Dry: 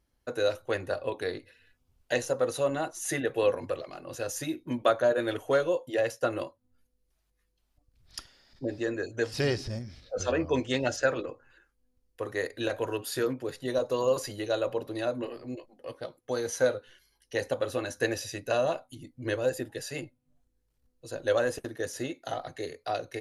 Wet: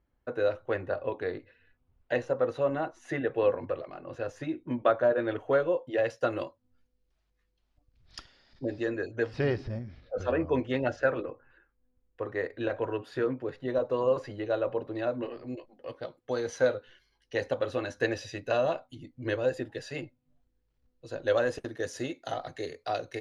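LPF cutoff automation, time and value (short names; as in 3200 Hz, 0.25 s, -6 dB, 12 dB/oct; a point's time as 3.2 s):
5.79 s 2100 Hz
6.22 s 4600 Hz
8.78 s 4600 Hz
9.36 s 2100 Hz
14.86 s 2100 Hz
15.49 s 4000 Hz
21.15 s 4000 Hz
21.98 s 6700 Hz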